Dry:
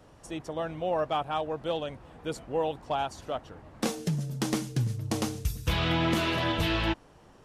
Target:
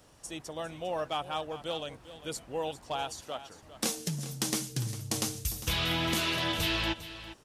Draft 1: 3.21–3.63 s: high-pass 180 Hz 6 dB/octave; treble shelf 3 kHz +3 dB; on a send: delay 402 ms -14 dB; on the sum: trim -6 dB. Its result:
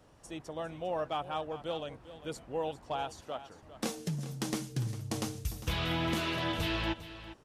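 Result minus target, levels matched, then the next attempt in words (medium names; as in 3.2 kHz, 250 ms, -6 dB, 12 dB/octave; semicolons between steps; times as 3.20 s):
8 kHz band -6.5 dB
3.21–3.63 s: high-pass 180 Hz 6 dB/octave; treble shelf 3 kHz +14.5 dB; on a send: delay 402 ms -14 dB; on the sum: trim -6 dB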